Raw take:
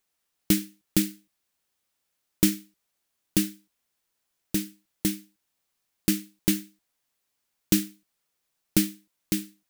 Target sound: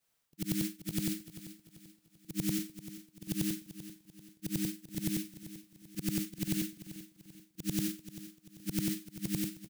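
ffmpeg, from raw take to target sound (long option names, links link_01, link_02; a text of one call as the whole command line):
ffmpeg -i in.wav -af "afftfilt=real='re':imag='-im':win_size=8192:overlap=0.75,equalizer=frequency=150:width=2.5:gain=8.5,areverse,acompressor=threshold=-37dB:ratio=5,areverse,aecho=1:1:390|780|1170|1560:0.2|0.0818|0.0335|0.0138,volume=5.5dB" out.wav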